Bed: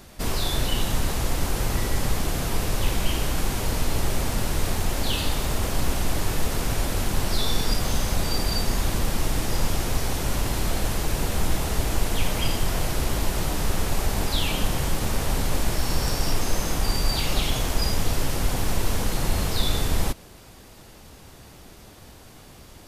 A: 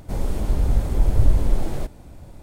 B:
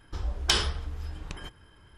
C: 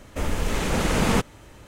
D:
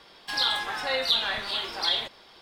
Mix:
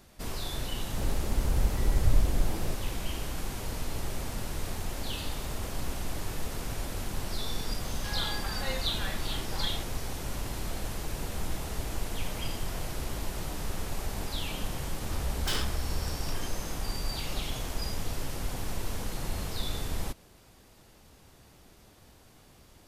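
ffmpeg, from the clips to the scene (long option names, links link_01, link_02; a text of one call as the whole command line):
ffmpeg -i bed.wav -i cue0.wav -i cue1.wav -i cue2.wav -i cue3.wav -filter_complex "[0:a]volume=-10dB[link_01];[4:a]highshelf=frequency=12000:gain=-8.5[link_02];[2:a]volume=28dB,asoftclip=hard,volume=-28dB[link_03];[1:a]atrim=end=2.42,asetpts=PTS-STARTPTS,volume=-7.5dB,afade=type=in:duration=0.004:curve=hsin,afade=type=out:start_time=2.416:duration=0.004:curve=hsin,adelay=880[link_04];[link_02]atrim=end=2.41,asetpts=PTS-STARTPTS,volume=-8.5dB,afade=type=in:duration=0.004:curve=hsin,afade=type=out:start_time=2.406:duration=0.004:curve=hsin,adelay=7760[link_05];[link_03]atrim=end=1.97,asetpts=PTS-STARTPTS,volume=-1dB,afade=type=in:duration=0.004:curve=hsin,afade=type=out:start_time=1.966:duration=0.004:curve=hsin,adelay=14980[link_06];[link_01][link_04][link_05][link_06]amix=inputs=4:normalize=0" out.wav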